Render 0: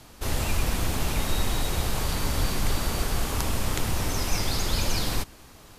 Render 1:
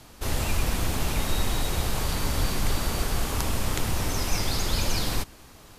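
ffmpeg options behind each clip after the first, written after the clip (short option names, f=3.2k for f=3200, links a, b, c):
-af anull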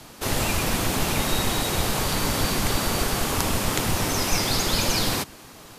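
-filter_complex "[0:a]acrossover=split=110[a][b];[a]aeval=exprs='max(val(0),0)':c=same[c];[b]acontrast=49[d];[c][d]amix=inputs=2:normalize=0"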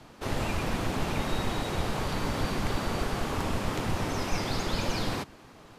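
-af "aeval=exprs='0.266*(abs(mod(val(0)/0.266+3,4)-2)-1)':c=same,aemphasis=mode=reproduction:type=75kf,volume=-4.5dB"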